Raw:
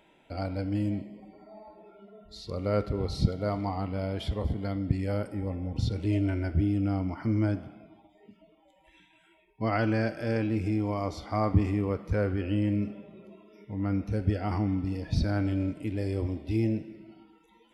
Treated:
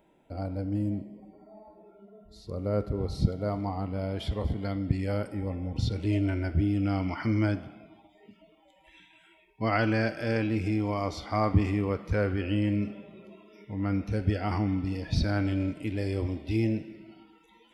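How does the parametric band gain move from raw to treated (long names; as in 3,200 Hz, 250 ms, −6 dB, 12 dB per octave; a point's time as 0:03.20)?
parametric band 3,000 Hz 2.6 octaves
0:02.65 −11 dB
0:03.23 −5 dB
0:03.87 −5 dB
0:04.41 +2.5 dB
0:06.68 +2.5 dB
0:07.12 +14 dB
0:07.65 +5 dB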